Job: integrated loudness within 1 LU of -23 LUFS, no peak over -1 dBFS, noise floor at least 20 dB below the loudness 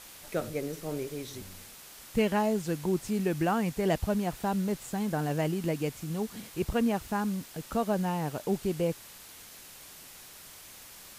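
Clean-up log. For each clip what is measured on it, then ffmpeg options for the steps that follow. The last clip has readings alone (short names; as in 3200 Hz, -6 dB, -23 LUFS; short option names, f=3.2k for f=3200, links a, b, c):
noise floor -50 dBFS; noise floor target -51 dBFS; loudness -31.0 LUFS; peak -15.5 dBFS; loudness target -23.0 LUFS
-> -af "afftdn=nr=6:nf=-50"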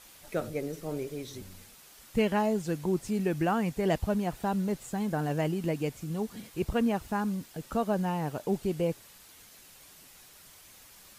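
noise floor -54 dBFS; loudness -31.0 LUFS; peak -15.5 dBFS; loudness target -23.0 LUFS
-> -af "volume=8dB"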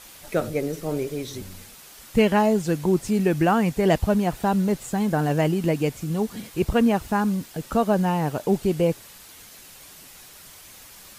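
loudness -23.0 LUFS; peak -7.5 dBFS; noise floor -46 dBFS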